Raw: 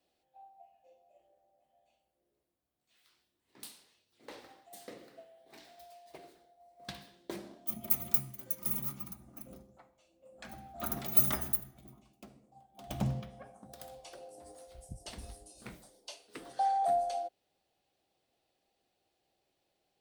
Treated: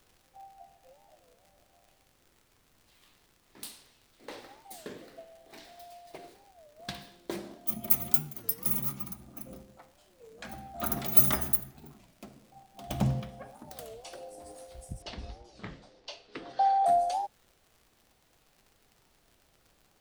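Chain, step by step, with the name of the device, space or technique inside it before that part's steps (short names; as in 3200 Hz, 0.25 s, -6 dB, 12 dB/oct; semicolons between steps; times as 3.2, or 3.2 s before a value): warped LP (record warp 33 1/3 rpm, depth 250 cents; crackle 100/s -54 dBFS; pink noise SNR 33 dB); 15.02–16.86 LPF 5100 Hz 24 dB/oct; gain +5 dB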